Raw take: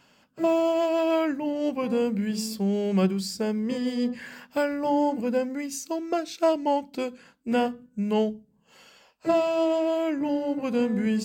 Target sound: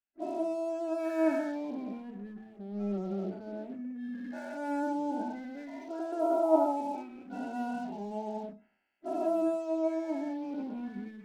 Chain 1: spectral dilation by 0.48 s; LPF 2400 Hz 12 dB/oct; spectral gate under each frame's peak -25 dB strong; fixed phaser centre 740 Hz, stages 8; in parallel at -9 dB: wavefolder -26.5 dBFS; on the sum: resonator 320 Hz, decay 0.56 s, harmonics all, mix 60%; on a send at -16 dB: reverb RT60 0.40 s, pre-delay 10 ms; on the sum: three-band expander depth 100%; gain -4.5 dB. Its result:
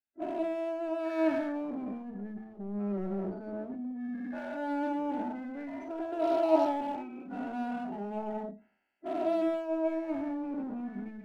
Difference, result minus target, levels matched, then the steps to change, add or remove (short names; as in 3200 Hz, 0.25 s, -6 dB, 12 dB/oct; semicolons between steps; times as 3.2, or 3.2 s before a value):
wavefolder: distortion -15 dB
change: wavefolder -36.5 dBFS